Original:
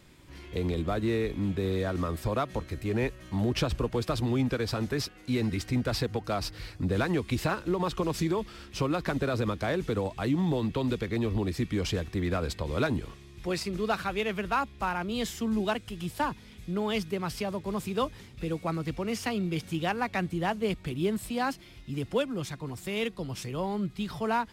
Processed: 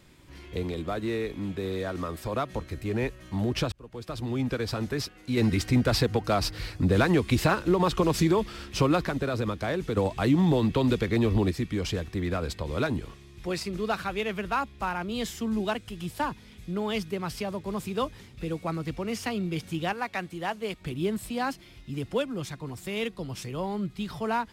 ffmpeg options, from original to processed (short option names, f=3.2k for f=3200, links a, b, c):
-filter_complex "[0:a]asettb=1/sr,asplit=3[a][b][c];[a]atrim=end=0.634[d];[b]atrim=start=0.63:end=2.34,asetpts=PTS-STARTPTS,afade=t=in:d=0.004:c=qsin,afade=t=out:st=1.706:d=0.004:c=qsin,lowshelf=f=180:g=-7[e];[c]atrim=start=2.336[f];[d][e]acrossfade=d=0.004:c1=hsin:c2=qsin[g];[g][f]acrossfade=d=0.004:c1=qsin:c2=hsin,asettb=1/sr,asplit=3[h][i][j];[h]atrim=end=5.374[k];[i]atrim=start=5.37:end=9.06,asetpts=PTS-STARTPTS,afade=t=in:d=0.004:c=qsin,afade=t=out:st=3.686:d=0.004:c=qsin,acontrast=38[l];[j]atrim=start=9.056[m];[k][l]acrossfade=d=0.004:c1=hsin:c2=qsin[n];[n][m]acrossfade=d=0.004:c1=qsin:c2=hsin,asettb=1/sr,asplit=3[o][p][q];[o]atrim=end=19.934[r];[p]atrim=start=19.93:end=20.81,asetpts=PTS-STARTPTS,afade=t=in:d=0.004:c=qsin,afade=t=out:st=0.876:d=0.004:c=qsin,lowshelf=f=270:g=-11.5[s];[q]atrim=start=20.806[t];[r][s]acrossfade=d=0.004:c1=hsin:c2=qsin[u];[u][t]acrossfade=d=0.004:c1=qsin:c2=hsin,asplit=4[v][w][x][y];[v]atrim=end=3.72,asetpts=PTS-STARTPTS,afade=t=out:st=3.716:d=0.004:c=hsin[z];[w]atrim=start=3.72:end=9.972,asetpts=PTS-STARTPTS,afade=t=in:d=0.82[aa];[x]atrim=start=9.968:end=11.512,asetpts=PTS-STARTPTS,volume=5dB[ab];[y]atrim=start=11.508[ac];[z][aa]concat=n=2:v=0:a=1[ad];[ad][ab]acrossfade=d=0.004:c1=hsin:c2=hsin[ae];[ae][ac]acrossfade=d=0.004:c1=hsin:c2=hsin"